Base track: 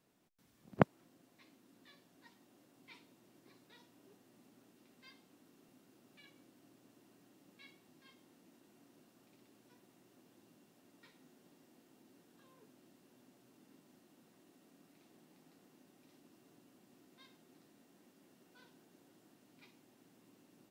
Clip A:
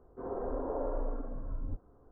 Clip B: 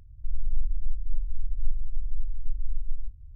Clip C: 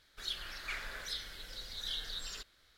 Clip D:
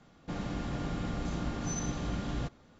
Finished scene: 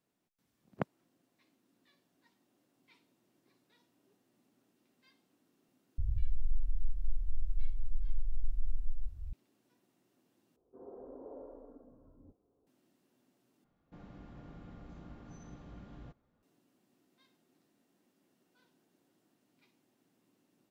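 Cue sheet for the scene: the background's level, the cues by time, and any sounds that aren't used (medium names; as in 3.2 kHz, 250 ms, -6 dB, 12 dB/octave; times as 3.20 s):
base track -8 dB
5.98 s: add B -5.5 dB + three bands compressed up and down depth 100%
10.56 s: replace with A -11 dB + band-pass filter 340 Hz, Q 0.85
13.64 s: replace with D -16 dB + low-pass 1.7 kHz 6 dB/octave
not used: C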